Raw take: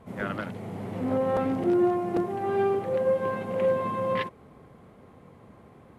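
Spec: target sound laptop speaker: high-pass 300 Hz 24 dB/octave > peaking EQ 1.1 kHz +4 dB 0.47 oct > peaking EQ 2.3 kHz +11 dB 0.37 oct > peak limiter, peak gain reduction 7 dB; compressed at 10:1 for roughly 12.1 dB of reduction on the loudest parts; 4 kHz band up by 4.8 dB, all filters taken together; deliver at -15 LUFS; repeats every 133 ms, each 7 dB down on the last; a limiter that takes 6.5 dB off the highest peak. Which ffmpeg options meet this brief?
-af "equalizer=f=4000:t=o:g=4,acompressor=threshold=0.0251:ratio=10,alimiter=level_in=1.78:limit=0.0631:level=0:latency=1,volume=0.562,highpass=f=300:w=0.5412,highpass=f=300:w=1.3066,equalizer=f=1100:t=o:w=0.47:g=4,equalizer=f=2300:t=o:w=0.37:g=11,aecho=1:1:133|266|399|532|665:0.447|0.201|0.0905|0.0407|0.0183,volume=13.3,alimiter=limit=0.447:level=0:latency=1"

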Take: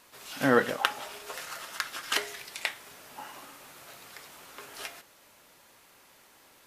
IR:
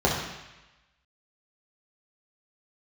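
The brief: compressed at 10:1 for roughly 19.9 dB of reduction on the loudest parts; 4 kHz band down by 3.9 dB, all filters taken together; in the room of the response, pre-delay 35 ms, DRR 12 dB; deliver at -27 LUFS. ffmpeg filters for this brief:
-filter_complex "[0:a]equalizer=f=4000:t=o:g=-5.5,acompressor=threshold=0.0141:ratio=10,asplit=2[s0][s1];[1:a]atrim=start_sample=2205,adelay=35[s2];[s1][s2]afir=irnorm=-1:irlink=0,volume=0.0376[s3];[s0][s3]amix=inputs=2:normalize=0,volume=6.68"

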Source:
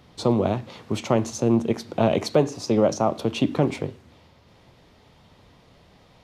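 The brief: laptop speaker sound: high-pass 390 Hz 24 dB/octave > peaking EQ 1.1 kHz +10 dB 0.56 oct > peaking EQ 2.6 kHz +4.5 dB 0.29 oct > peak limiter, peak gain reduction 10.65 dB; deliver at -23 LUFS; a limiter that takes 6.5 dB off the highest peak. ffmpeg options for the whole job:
-af "alimiter=limit=0.211:level=0:latency=1,highpass=f=390:w=0.5412,highpass=f=390:w=1.3066,equalizer=f=1100:t=o:w=0.56:g=10,equalizer=f=2600:t=o:w=0.29:g=4.5,volume=2.99,alimiter=limit=0.251:level=0:latency=1"

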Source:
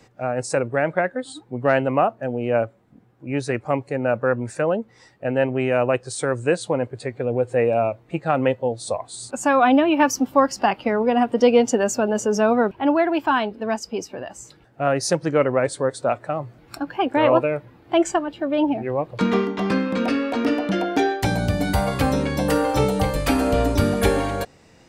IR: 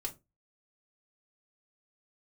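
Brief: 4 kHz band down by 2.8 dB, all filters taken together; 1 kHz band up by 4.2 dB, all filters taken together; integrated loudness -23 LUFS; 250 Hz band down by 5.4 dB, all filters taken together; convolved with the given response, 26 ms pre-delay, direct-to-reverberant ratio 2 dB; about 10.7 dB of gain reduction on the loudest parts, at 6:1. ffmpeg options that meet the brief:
-filter_complex "[0:a]equalizer=f=250:t=o:g=-7,equalizer=f=1000:t=o:g=6.5,equalizer=f=4000:t=o:g=-4.5,acompressor=threshold=0.0891:ratio=6,asplit=2[s0][s1];[1:a]atrim=start_sample=2205,adelay=26[s2];[s1][s2]afir=irnorm=-1:irlink=0,volume=0.794[s3];[s0][s3]amix=inputs=2:normalize=0,volume=1.19"

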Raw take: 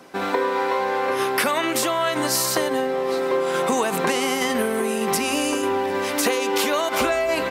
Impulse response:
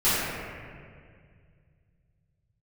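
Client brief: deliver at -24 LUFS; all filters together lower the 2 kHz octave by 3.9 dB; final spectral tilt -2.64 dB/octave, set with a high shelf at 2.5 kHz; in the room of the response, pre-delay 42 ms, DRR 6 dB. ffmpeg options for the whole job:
-filter_complex "[0:a]equalizer=f=2000:t=o:g=-8,highshelf=f=2500:g=6,asplit=2[s0][s1];[1:a]atrim=start_sample=2205,adelay=42[s2];[s1][s2]afir=irnorm=-1:irlink=0,volume=0.0708[s3];[s0][s3]amix=inputs=2:normalize=0,volume=0.668"

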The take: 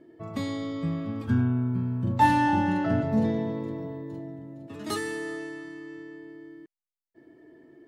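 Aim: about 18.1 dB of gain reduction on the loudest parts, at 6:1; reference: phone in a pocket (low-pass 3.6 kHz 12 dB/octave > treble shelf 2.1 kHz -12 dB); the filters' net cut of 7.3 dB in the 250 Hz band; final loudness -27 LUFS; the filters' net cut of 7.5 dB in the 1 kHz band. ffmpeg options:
-af "equalizer=f=250:t=o:g=-8.5,equalizer=f=1000:t=o:g=-6,acompressor=threshold=0.00794:ratio=6,lowpass=3600,highshelf=f=2100:g=-12,volume=9.44"

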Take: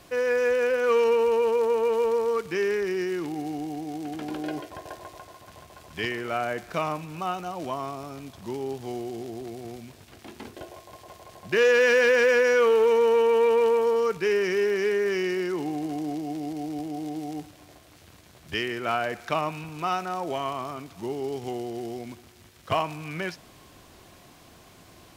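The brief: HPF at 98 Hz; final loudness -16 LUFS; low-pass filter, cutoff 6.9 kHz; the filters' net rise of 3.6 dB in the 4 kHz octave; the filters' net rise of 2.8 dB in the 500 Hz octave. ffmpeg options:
-af "highpass=98,lowpass=6900,equalizer=f=500:t=o:g=3,equalizer=f=4000:t=o:g=6,volume=2.24"

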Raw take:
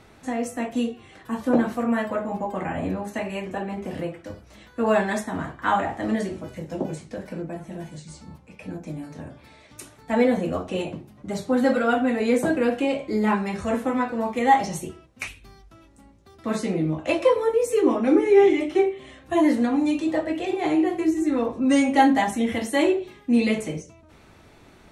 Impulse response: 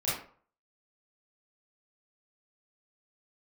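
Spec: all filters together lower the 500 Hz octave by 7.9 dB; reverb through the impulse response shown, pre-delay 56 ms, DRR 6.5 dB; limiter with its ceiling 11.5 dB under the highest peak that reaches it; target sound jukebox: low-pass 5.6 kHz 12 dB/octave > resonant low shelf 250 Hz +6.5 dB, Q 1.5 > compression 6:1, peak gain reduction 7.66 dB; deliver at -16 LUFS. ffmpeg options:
-filter_complex "[0:a]equalizer=f=500:t=o:g=-8.5,alimiter=limit=0.1:level=0:latency=1,asplit=2[s0][s1];[1:a]atrim=start_sample=2205,adelay=56[s2];[s1][s2]afir=irnorm=-1:irlink=0,volume=0.2[s3];[s0][s3]amix=inputs=2:normalize=0,lowpass=5600,lowshelf=f=250:t=q:w=1.5:g=6.5,acompressor=threshold=0.0631:ratio=6,volume=4.73"

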